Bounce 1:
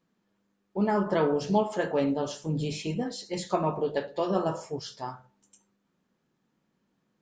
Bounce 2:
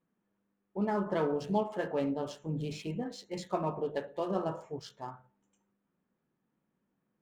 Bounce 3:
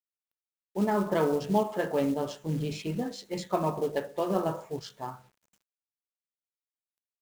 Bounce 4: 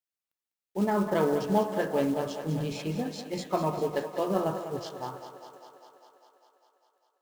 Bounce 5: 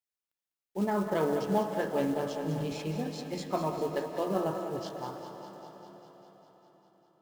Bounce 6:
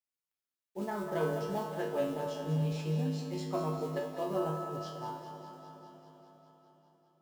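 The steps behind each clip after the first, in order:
adaptive Wiener filter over 9 samples; level −5.5 dB
log-companded quantiser 6 bits; level +4.5 dB
feedback echo with a high-pass in the loop 200 ms, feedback 73%, high-pass 200 Hz, level −10 dB
convolution reverb RT60 4.9 s, pre-delay 100 ms, DRR 8.5 dB; level −3 dB
tuned comb filter 52 Hz, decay 0.53 s, harmonics odd, mix 90%; level +7 dB

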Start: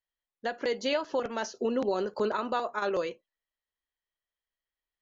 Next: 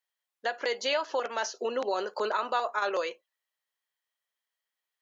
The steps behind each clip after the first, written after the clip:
high-pass filter 610 Hz 12 dB per octave
in parallel at −2.5 dB: brickwall limiter −26 dBFS, peak gain reduction 7.5 dB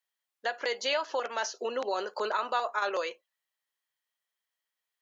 low-shelf EQ 390 Hz −5 dB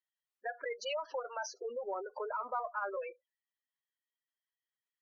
gate on every frequency bin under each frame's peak −10 dB strong
harmonic generator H 6 −45 dB, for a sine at −16.5 dBFS
level −6 dB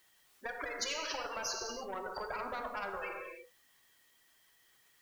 on a send at −8.5 dB: convolution reverb, pre-delay 3 ms
on the sum: every bin compressed towards the loudest bin 4 to 1
level +1 dB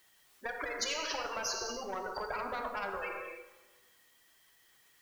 dense smooth reverb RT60 1.6 s, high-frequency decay 0.85×, DRR 13 dB
level +2 dB

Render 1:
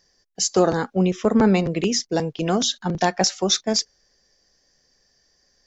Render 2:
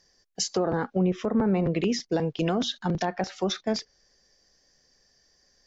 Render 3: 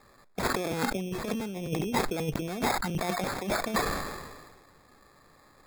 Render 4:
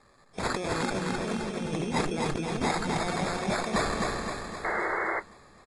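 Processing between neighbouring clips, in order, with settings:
treble cut that deepens with the level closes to 1,600 Hz, closed at −14.5 dBFS; brickwall limiter −15 dBFS, peak gain reduction 9.5 dB; level −1 dB
compressor whose output falls as the input rises −30 dBFS, ratio −0.5; decimation without filtering 15×; level that may fall only so fast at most 38 dB per second
repeating echo 259 ms, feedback 55%, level −3 dB; sound drawn into the spectrogram noise, 0:04.64–0:05.20, 320–2,200 Hz −28 dBFS; level −2 dB; AAC 32 kbit/s 22,050 Hz

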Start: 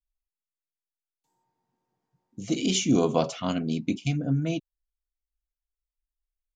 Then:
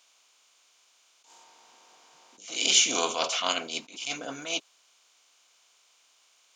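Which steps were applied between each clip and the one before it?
compressor on every frequency bin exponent 0.6
high-pass filter 1,100 Hz 12 dB per octave
level that may rise only so fast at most 120 dB per second
level +6.5 dB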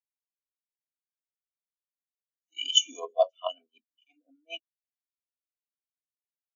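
transient designer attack +9 dB, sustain +5 dB
rotating-speaker cabinet horn 0.75 Hz, later 5.5 Hz, at 0:02.49
every bin expanded away from the loudest bin 4 to 1
level −1 dB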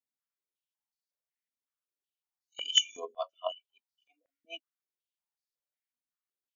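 high-pass on a step sequencer 5.4 Hz 230–4,600 Hz
level −4.5 dB

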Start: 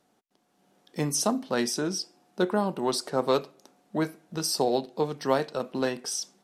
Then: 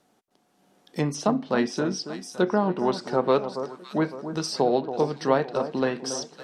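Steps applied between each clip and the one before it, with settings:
delay that swaps between a low-pass and a high-pass 279 ms, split 1,300 Hz, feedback 64%, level −10 dB
treble cut that deepens with the level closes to 2,800 Hz, closed at −23 dBFS
level +3 dB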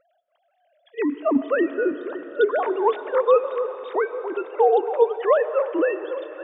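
three sine waves on the formant tracks
on a send at −12 dB: convolution reverb RT60 4.5 s, pre-delay 70 ms
on the sum: level +3.5 dB

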